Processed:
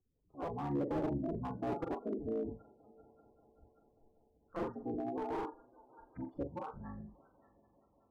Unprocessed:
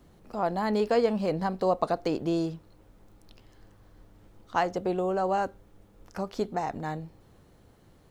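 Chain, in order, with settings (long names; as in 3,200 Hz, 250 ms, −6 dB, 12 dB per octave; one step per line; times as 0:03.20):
sub-harmonics by changed cycles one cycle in 3, inverted
echo machine with several playback heads 195 ms, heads first and third, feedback 71%, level −16 dB
gate on every frequency bin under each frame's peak −10 dB strong
low-pass filter 1,300 Hz 12 dB per octave
flutter between parallel walls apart 7.3 metres, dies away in 0.36 s
noise reduction from a noise print of the clip's start 15 dB
slew-rate limiting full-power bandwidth 30 Hz
level −8.5 dB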